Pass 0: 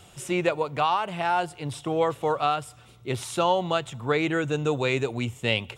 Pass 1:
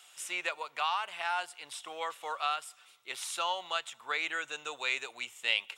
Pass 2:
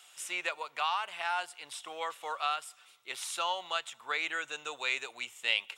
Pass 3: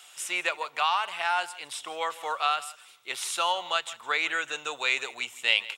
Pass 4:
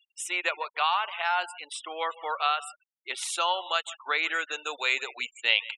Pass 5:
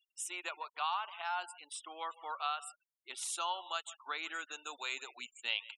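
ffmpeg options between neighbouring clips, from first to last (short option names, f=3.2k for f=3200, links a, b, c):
-af "highpass=1.3k,volume=-2dB"
-af anull
-af "aecho=1:1:161:0.119,volume=6dB"
-af "afftfilt=real='re*gte(hypot(re,im),0.0126)':imag='im*gte(hypot(re,im),0.0126)':win_size=1024:overlap=0.75"
-af "equalizer=f=500:t=o:w=1:g=-12,equalizer=f=2k:t=o:w=1:g=-11,equalizer=f=4k:t=o:w=1:g=-4,volume=-4dB"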